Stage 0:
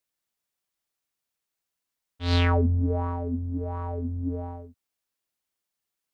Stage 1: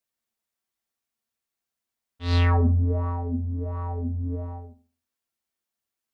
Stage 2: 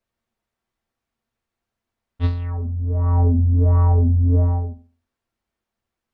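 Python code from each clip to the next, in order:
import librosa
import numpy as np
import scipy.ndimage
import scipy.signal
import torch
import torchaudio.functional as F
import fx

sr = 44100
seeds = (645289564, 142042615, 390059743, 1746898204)

y1 = fx.rev_fdn(x, sr, rt60_s=0.37, lf_ratio=1.1, hf_ratio=0.45, size_ms=26.0, drr_db=3.0)
y1 = F.gain(torch.from_numpy(y1), -3.0).numpy()
y2 = fx.lowpass(y1, sr, hz=1400.0, slope=6)
y2 = fx.low_shelf(y2, sr, hz=100.0, db=11.5)
y2 = fx.over_compress(y2, sr, threshold_db=-24.0, ratio=-1.0)
y2 = F.gain(torch.from_numpy(y2), 6.0).numpy()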